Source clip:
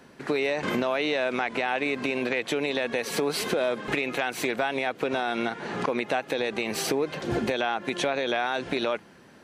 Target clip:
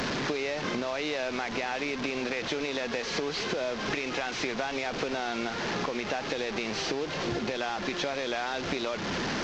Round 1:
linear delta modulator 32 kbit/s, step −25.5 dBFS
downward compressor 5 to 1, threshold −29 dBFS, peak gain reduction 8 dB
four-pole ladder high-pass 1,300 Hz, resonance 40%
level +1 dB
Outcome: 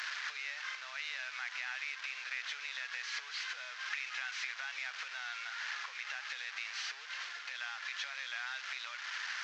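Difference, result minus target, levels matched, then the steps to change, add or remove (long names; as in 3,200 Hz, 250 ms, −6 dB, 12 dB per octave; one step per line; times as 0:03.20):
1,000 Hz band −5.0 dB
remove: four-pole ladder high-pass 1,300 Hz, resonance 40%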